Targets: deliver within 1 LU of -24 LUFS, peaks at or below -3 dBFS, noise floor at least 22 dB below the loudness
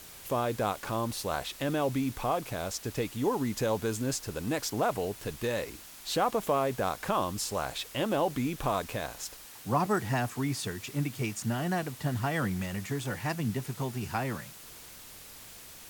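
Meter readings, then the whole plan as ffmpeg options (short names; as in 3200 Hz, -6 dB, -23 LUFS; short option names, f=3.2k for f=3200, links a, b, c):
noise floor -49 dBFS; noise floor target -54 dBFS; loudness -32.0 LUFS; peak -15.0 dBFS; loudness target -24.0 LUFS
-> -af "afftdn=nr=6:nf=-49"
-af "volume=8dB"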